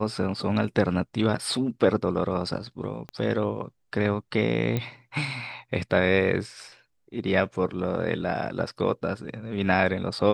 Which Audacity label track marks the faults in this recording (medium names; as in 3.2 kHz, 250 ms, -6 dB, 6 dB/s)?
3.090000	3.090000	pop -23 dBFS
4.770000	4.770000	pop -14 dBFS